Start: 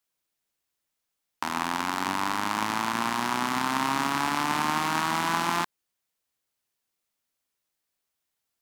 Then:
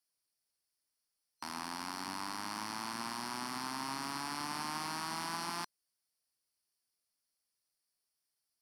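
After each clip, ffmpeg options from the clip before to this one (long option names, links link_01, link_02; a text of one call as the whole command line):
ffmpeg -i in.wav -af "superequalizer=14b=3.16:16b=2.82,alimiter=limit=-16dB:level=0:latency=1:release=10,volume=-8.5dB" out.wav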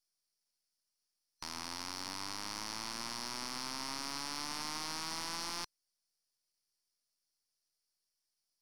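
ffmpeg -i in.wav -af "aeval=exprs='if(lt(val(0),0),0.251*val(0),val(0))':channel_layout=same,equalizer=frequency=5600:width_type=o:width=1.1:gain=8.5,volume=-1.5dB" out.wav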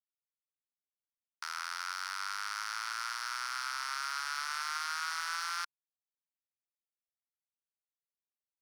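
ffmpeg -i in.wav -af "aeval=exprs='sgn(val(0))*max(abs(val(0))-0.00168,0)':channel_layout=same,highpass=frequency=1400:width_type=q:width=6.8" out.wav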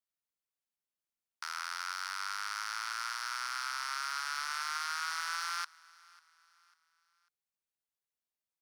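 ffmpeg -i in.wav -af "aecho=1:1:546|1092|1638:0.0631|0.0259|0.0106" out.wav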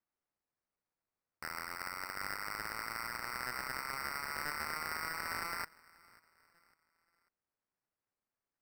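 ffmpeg -i in.wav -af "acrusher=samples=13:mix=1:aa=0.000001,volume=-3dB" out.wav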